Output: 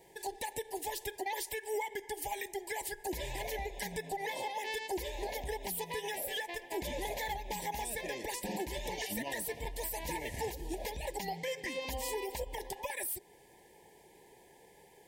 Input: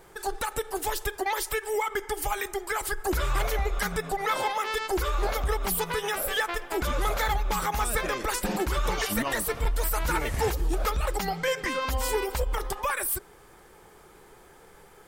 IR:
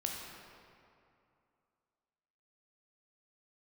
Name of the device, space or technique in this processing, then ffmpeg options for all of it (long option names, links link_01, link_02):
PA system with an anti-feedback notch: -af "highpass=frequency=140:poles=1,asuperstop=centerf=1300:order=20:qfactor=2,alimiter=limit=-22dB:level=0:latency=1:release=216,volume=-5.5dB"